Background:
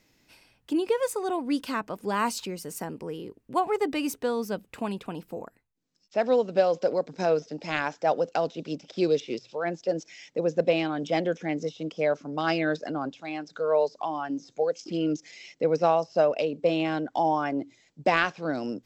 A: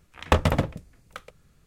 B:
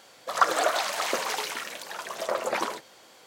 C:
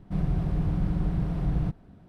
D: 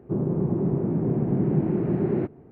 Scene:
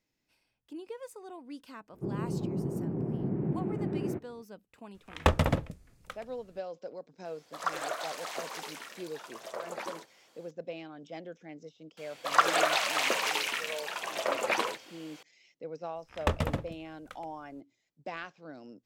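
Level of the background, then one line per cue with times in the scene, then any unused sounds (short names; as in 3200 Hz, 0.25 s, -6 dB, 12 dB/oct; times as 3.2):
background -17 dB
1.92 add D -9 dB
4.94 add A -4 dB
7.25 add B -11 dB
11.97 add B -2.5 dB + bell 2600 Hz +8 dB
15.95 add A -8.5 dB
not used: C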